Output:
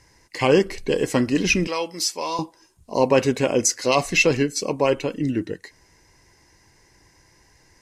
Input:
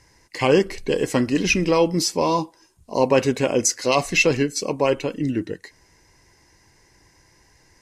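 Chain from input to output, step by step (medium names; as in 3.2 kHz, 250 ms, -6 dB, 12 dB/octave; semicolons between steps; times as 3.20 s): 1.67–2.39 s: high-pass 1.4 kHz 6 dB/octave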